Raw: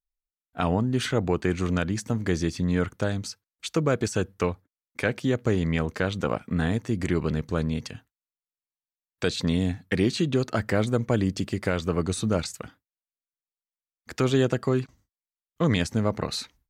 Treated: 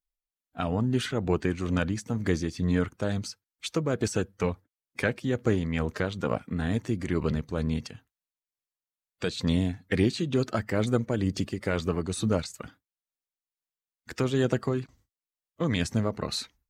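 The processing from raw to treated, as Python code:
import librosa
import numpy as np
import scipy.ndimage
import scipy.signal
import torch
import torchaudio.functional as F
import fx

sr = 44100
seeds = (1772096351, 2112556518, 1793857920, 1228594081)

y = fx.spec_quant(x, sr, step_db=15)
y = y * (1.0 - 0.42 / 2.0 + 0.42 / 2.0 * np.cos(2.0 * np.pi * 2.2 * (np.arange(len(y)) / sr)))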